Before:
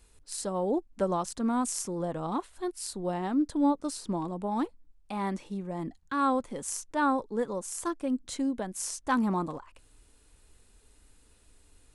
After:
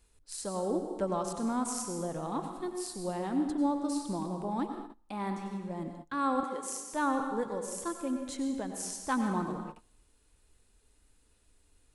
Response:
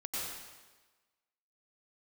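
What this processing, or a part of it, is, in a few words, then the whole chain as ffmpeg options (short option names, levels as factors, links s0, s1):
keyed gated reverb: -filter_complex "[0:a]asplit=3[s0][s1][s2];[1:a]atrim=start_sample=2205[s3];[s1][s3]afir=irnorm=-1:irlink=0[s4];[s2]apad=whole_len=526752[s5];[s4][s5]sidechaingate=range=0.0562:threshold=0.00282:ratio=16:detection=peak,volume=0.596[s6];[s0][s6]amix=inputs=2:normalize=0,asettb=1/sr,asplit=3[s7][s8][s9];[s7]atrim=end=6.434[s10];[s8]atrim=start=6.43:end=6.93,asetpts=PTS-STARTPTS,afade=t=in:d=0.004:c=qsin,afade=t=out:st=0.496:d=0.004:c=qsin,highpass=f=240:w=0.5412,highpass=f=240:w=1.3066[s11];[s9]atrim=start=6.926[s12];[s10][s11]acrossfade=d=0.004:c1=hsin:c2=qsin[s13];[s13][s12]acrossfade=d=0.004:c1=qsin:c2=hsin,volume=0.473"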